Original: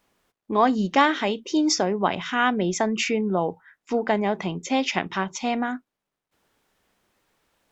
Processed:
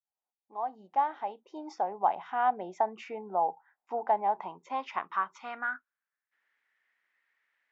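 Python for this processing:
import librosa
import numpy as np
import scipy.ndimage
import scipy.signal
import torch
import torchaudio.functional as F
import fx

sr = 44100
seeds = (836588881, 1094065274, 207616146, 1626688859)

y = fx.fade_in_head(x, sr, length_s=2.35)
y = fx.filter_sweep_bandpass(y, sr, from_hz=810.0, to_hz=1900.0, start_s=4.13, end_s=6.47, q=6.0)
y = F.gain(torch.from_numpy(y), 4.0).numpy()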